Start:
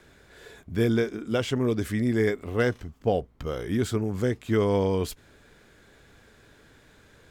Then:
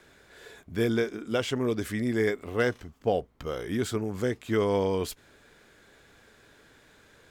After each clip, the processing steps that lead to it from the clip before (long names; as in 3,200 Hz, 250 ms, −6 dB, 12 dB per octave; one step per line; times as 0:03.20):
low-shelf EQ 220 Hz −7.5 dB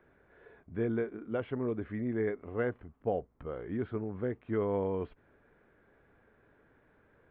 Gaussian smoothing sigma 4.4 samples
level −5.5 dB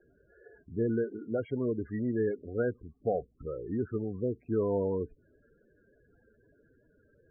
spectral peaks only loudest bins 16
level +2.5 dB